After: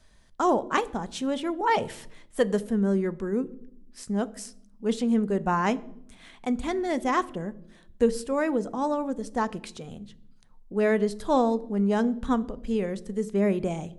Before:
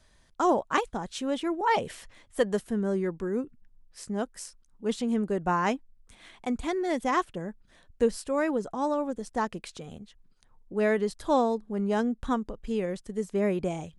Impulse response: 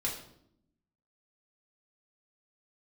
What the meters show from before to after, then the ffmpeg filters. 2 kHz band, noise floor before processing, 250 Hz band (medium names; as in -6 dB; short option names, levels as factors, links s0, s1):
+1.0 dB, -61 dBFS, +3.5 dB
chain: -filter_complex "[0:a]asplit=2[s0][s1];[1:a]atrim=start_sample=2205,lowshelf=f=430:g=10.5[s2];[s1][s2]afir=irnorm=-1:irlink=0,volume=0.119[s3];[s0][s3]amix=inputs=2:normalize=0"